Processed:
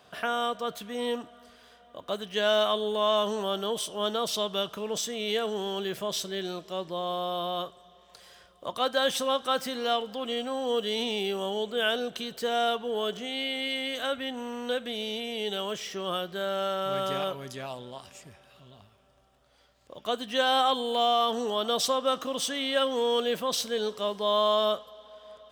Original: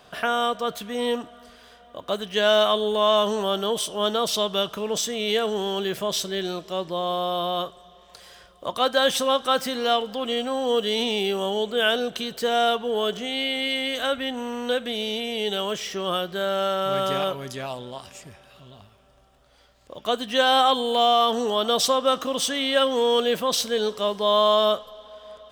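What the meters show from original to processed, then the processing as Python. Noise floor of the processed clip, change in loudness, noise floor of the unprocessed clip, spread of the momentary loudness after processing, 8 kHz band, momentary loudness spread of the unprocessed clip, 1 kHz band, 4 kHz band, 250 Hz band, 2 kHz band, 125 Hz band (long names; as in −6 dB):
−59 dBFS, −5.5 dB, −53 dBFS, 11 LU, −5.5 dB, 11 LU, −5.5 dB, −5.5 dB, −5.5 dB, −5.5 dB, −5.5 dB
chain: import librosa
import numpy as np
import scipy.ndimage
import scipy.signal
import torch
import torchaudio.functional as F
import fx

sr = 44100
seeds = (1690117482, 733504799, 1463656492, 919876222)

y = scipy.signal.sosfilt(scipy.signal.butter(2, 57.0, 'highpass', fs=sr, output='sos'), x)
y = F.gain(torch.from_numpy(y), -5.5).numpy()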